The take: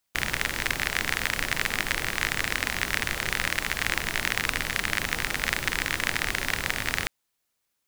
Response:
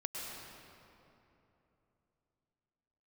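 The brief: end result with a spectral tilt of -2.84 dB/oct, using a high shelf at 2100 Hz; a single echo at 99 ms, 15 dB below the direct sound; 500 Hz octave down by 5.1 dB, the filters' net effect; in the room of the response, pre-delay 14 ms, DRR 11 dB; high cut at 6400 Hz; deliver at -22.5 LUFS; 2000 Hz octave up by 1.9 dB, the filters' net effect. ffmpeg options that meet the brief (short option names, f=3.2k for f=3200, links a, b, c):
-filter_complex "[0:a]lowpass=6.4k,equalizer=f=500:t=o:g=-6.5,equalizer=f=2k:t=o:g=6.5,highshelf=f=2.1k:g=-7.5,aecho=1:1:99:0.178,asplit=2[a][b];[1:a]atrim=start_sample=2205,adelay=14[c];[b][c]afir=irnorm=-1:irlink=0,volume=-12.5dB[d];[a][d]amix=inputs=2:normalize=0,volume=3.5dB"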